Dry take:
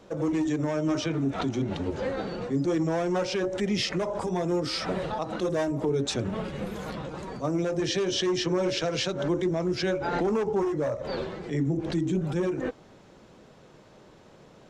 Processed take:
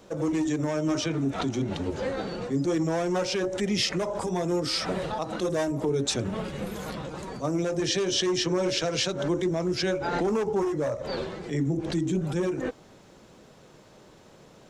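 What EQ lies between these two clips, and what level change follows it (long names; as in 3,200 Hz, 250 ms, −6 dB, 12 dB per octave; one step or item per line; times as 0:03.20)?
high-shelf EQ 6,400 Hz +10 dB
0.0 dB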